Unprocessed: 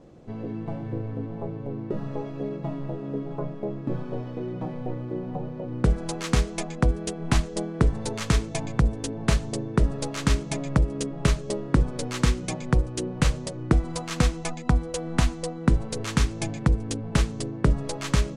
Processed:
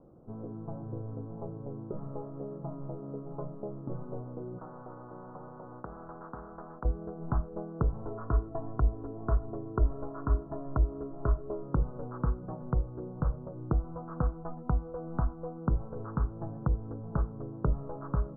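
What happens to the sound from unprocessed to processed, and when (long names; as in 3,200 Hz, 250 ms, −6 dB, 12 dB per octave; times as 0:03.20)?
0:04.58–0:06.85: every bin compressed towards the loudest bin 4 to 1
0:08.02–0:11.63: comb filter 2.9 ms
0:12.70–0:14.06: high-frequency loss of the air 360 metres
whole clip: dynamic equaliser 260 Hz, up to −6 dB, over −35 dBFS, Q 1.2; Butterworth low-pass 1,400 Hz 72 dB per octave; level −6.5 dB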